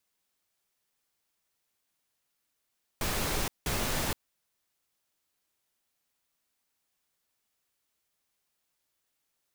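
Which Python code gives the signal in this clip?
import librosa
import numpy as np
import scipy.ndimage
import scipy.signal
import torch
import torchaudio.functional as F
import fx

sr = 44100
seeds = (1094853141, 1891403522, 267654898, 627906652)

y = fx.noise_burst(sr, seeds[0], colour='pink', on_s=0.47, off_s=0.18, bursts=2, level_db=-30.5)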